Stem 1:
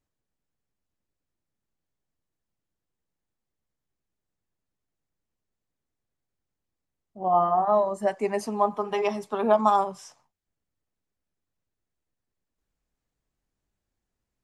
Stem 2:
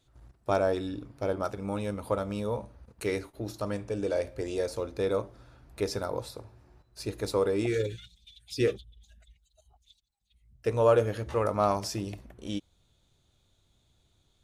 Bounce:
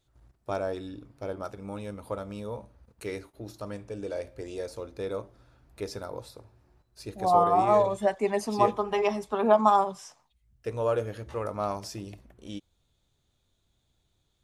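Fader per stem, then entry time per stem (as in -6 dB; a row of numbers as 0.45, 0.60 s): 0.0, -5.0 dB; 0.00, 0.00 s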